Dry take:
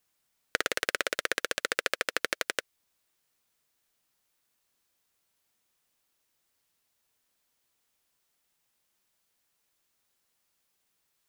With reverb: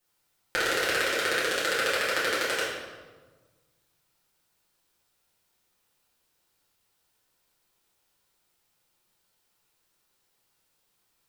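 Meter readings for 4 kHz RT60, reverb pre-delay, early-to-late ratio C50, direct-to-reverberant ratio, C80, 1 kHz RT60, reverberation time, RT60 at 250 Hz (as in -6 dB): 0.95 s, 5 ms, 0.5 dB, -9.5 dB, 3.0 dB, 1.3 s, 1.4 s, 1.8 s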